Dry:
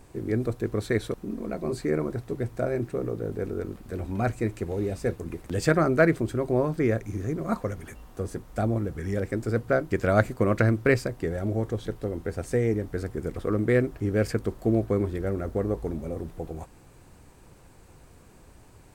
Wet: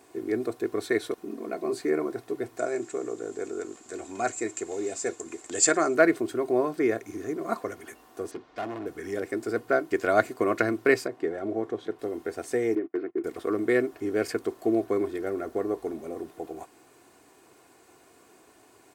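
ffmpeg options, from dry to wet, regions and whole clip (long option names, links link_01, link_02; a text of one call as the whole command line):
ffmpeg -i in.wav -filter_complex "[0:a]asettb=1/sr,asplit=3[link_01][link_02][link_03];[link_01]atrim=end=2.584[link_04];[link_02]atrim=start=2.58:end=5.95,asetpts=PTS-STARTPTS,afade=type=in:duration=0.004:curve=qsin,afade=type=out:start_time=3.366:duration=0.004:curve=qsin,lowpass=frequency=7300:width_type=q:width=12,lowshelf=frequency=330:gain=-5.5[link_05];[link_03]atrim=start=5.946[link_06];[link_04][link_05]acrossfade=duration=0.004:curve1=hsin:curve2=qsin[link_07];[link_07][link_06]acrossfade=duration=0.004:curve1=qsin:curve2=hsin,asettb=1/sr,asplit=3[link_08][link_09][link_10];[link_08]atrim=end=8.314[link_11];[link_09]atrim=start=8.31:end=8.86,asetpts=PTS-STARTPTS,afade=type=in:duration=0.004:curve=qsin,afade=type=out:start_time=0.546:duration=0.004:curve=qsin,lowpass=frequency=4900:width=0.5412,lowpass=frequency=4900:width=1.3066,asoftclip=type=hard:threshold=-29dB[link_12];[link_10]atrim=start=8.856[link_13];[link_11][link_12]acrossfade=duration=0.004:curve1=hsin:curve2=qsin[link_14];[link_14][link_13]acrossfade=duration=0.004:curve1=qsin:curve2=hsin,asettb=1/sr,asplit=3[link_15][link_16][link_17];[link_15]atrim=end=11.064[link_18];[link_16]atrim=start=11.06:end=11.99,asetpts=PTS-STARTPTS,afade=type=in:duration=0.004:curve=qsin,afade=type=out:start_time=0.926:duration=0.004:curve=qsin,highpass=99,aemphasis=mode=reproduction:type=75fm[link_19];[link_17]atrim=start=11.986[link_20];[link_18][link_19]acrossfade=duration=0.004:curve1=hsin:curve2=qsin[link_21];[link_21][link_20]acrossfade=duration=0.004:curve1=qsin:curve2=hsin,asettb=1/sr,asplit=3[link_22][link_23][link_24];[link_22]atrim=end=12.754[link_25];[link_23]atrim=start=12.75:end=13.24,asetpts=PTS-STARTPTS,afade=type=in:duration=0.004:curve=qsin,afade=type=out:start_time=0.486:duration=0.004:curve=qsin,agate=range=-26dB:threshold=-36dB:ratio=16:release=100:detection=peak,highpass=frequency=150:width=0.5412,highpass=frequency=150:width=1.3066,equalizer=frequency=210:width_type=q:width=4:gain=-5,equalizer=frequency=340:width_type=q:width=4:gain=9,equalizer=frequency=510:width_type=q:width=4:gain=-7,equalizer=frequency=870:width_type=q:width=4:gain=-9,equalizer=frequency=1600:width_type=q:width=4:gain=-5,lowpass=frequency=2400:width=0.5412,lowpass=frequency=2400:width=1.3066,asoftclip=type=hard:threshold=-21dB[link_26];[link_24]atrim=start=13.236[link_27];[link_25][link_26]acrossfade=duration=0.004:curve1=hsin:curve2=qsin[link_28];[link_28][link_27]acrossfade=duration=0.004:curve1=qsin:curve2=hsin,highpass=290,aecho=1:1:2.8:0.5" out.wav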